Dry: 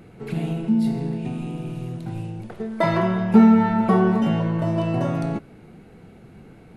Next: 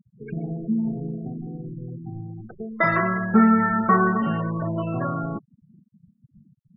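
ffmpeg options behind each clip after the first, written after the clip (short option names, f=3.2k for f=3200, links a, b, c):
-af "bandreject=f=910:w=28,afftfilt=real='re*gte(hypot(re,im),0.0398)':imag='im*gte(hypot(re,im),0.0398)':win_size=1024:overlap=0.75,superequalizer=10b=3.98:11b=3.98:13b=0.631:15b=0.631:16b=2.82,volume=-4dB"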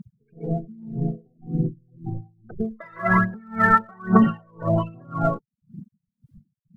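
-af "aphaser=in_gain=1:out_gain=1:delay=2.3:decay=0.69:speed=1.2:type=triangular,alimiter=limit=-9dB:level=0:latency=1:release=361,aeval=exprs='val(0)*pow(10,-36*(0.5-0.5*cos(2*PI*1.9*n/s))/20)':c=same,volume=8.5dB"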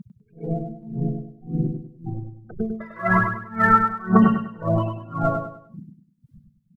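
-af "aecho=1:1:100|200|300|400:0.501|0.17|0.0579|0.0197"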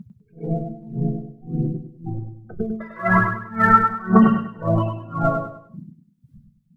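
-af "flanger=delay=9.7:depth=8.1:regen=-69:speed=0.42:shape=triangular,volume=6dB"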